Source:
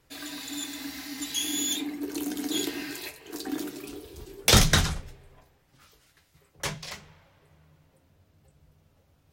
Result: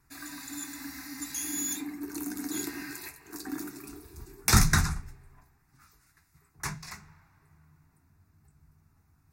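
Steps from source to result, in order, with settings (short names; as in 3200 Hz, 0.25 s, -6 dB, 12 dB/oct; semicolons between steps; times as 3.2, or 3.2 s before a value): bell 2700 Hz +4 dB 0.35 oct; fixed phaser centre 1300 Hz, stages 4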